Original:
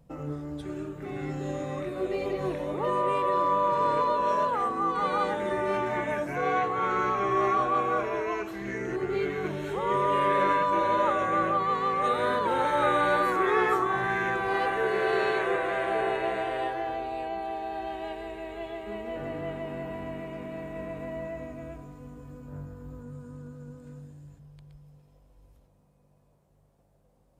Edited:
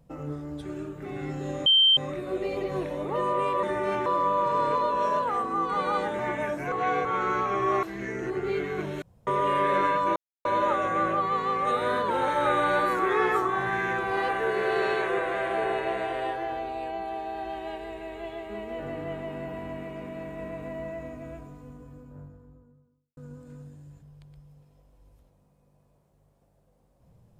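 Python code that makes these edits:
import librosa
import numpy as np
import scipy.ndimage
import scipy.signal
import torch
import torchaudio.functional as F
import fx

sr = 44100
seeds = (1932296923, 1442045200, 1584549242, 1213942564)

y = fx.studio_fade_out(x, sr, start_s=21.76, length_s=1.78)
y = fx.edit(y, sr, fx.insert_tone(at_s=1.66, length_s=0.31, hz=3130.0, db=-15.5),
    fx.move(start_s=5.45, length_s=0.43, to_s=3.32),
    fx.reverse_span(start_s=6.41, length_s=0.33),
    fx.cut(start_s=7.52, length_s=0.97),
    fx.room_tone_fill(start_s=9.68, length_s=0.25),
    fx.insert_silence(at_s=10.82, length_s=0.29), tone=tone)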